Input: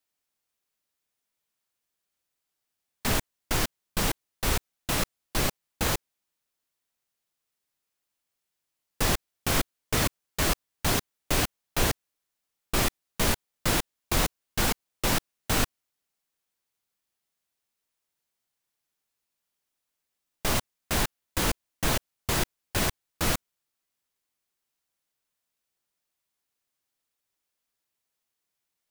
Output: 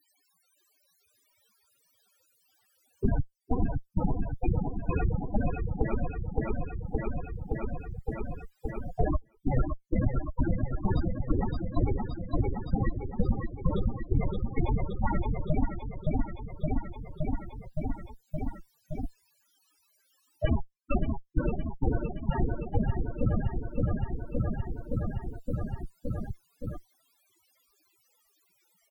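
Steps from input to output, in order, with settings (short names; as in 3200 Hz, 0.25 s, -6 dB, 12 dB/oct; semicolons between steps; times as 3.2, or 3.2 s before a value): added harmonics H 2 -40 dB, 3 -22 dB, 4 -6 dB, 8 -14 dB, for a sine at -9.5 dBFS; loudest bins only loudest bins 8; on a send: feedback echo 0.568 s, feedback 47%, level -5 dB; on the sum: three-band squash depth 100%; gain +2 dB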